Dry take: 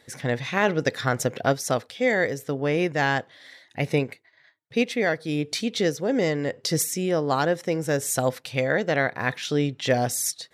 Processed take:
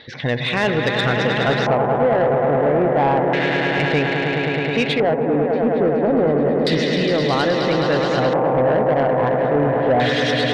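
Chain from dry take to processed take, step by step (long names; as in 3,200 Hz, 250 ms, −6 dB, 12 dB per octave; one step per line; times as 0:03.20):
gate on every frequency bin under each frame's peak −30 dB strong
low-pass filter 4,700 Hz 24 dB per octave
echo that builds up and dies away 106 ms, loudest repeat 5, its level −9 dB
auto-filter low-pass square 0.3 Hz 900–3,700 Hz
in parallel at +0.5 dB: brickwall limiter −15 dBFS, peak gain reduction 9 dB
on the sum: soft clipping −10 dBFS, distortion −17 dB
reversed playback
upward compression, threshold −21 dBFS
reversed playback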